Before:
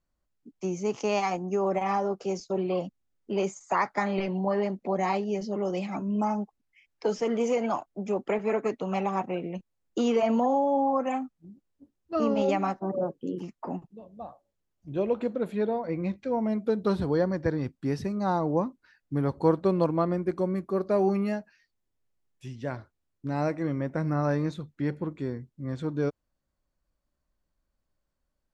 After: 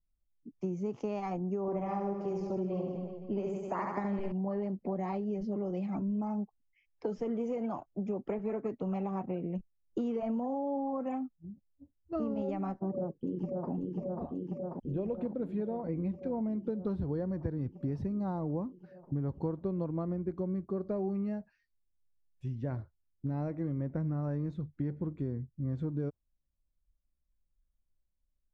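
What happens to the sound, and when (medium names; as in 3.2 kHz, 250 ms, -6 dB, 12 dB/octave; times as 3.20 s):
1.61–4.32 s: reverse bouncing-ball echo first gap 70 ms, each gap 1.2×, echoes 5
12.89–13.71 s: echo throw 540 ms, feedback 80%, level -3.5 dB
whole clip: spectral noise reduction 12 dB; tilt EQ -4 dB/octave; compression 6:1, threshold -24 dBFS; trim -7 dB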